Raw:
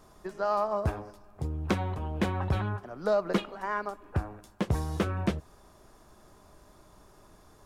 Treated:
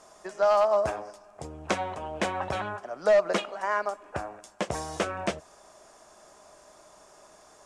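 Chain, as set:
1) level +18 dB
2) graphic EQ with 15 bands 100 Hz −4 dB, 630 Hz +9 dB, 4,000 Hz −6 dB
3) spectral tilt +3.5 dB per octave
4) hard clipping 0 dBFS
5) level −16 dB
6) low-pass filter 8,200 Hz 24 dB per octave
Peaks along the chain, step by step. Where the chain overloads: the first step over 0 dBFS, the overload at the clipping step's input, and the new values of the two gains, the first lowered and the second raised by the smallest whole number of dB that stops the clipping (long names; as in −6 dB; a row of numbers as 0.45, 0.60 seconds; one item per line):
+6.0, +8.5, +6.0, 0.0, −16.0, −14.0 dBFS
step 1, 6.0 dB
step 1 +12 dB, step 5 −10 dB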